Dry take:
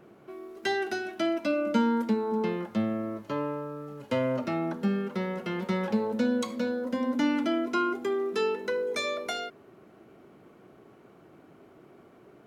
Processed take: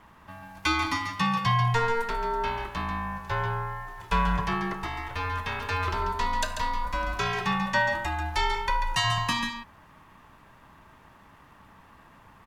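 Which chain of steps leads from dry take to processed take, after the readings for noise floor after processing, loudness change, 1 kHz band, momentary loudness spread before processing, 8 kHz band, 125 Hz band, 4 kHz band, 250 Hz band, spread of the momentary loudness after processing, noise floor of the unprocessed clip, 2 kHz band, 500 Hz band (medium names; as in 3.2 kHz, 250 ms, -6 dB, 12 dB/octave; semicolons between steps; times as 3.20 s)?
-55 dBFS, +1.5 dB, +8.5 dB, 8 LU, +7.0 dB, +8.0 dB, +7.0 dB, -7.5 dB, 9 LU, -56 dBFS, +7.0 dB, -6.5 dB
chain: Chebyshev high-pass 520 Hz, order 3; ring modulator 470 Hz; delay 140 ms -7.5 dB; trim +9 dB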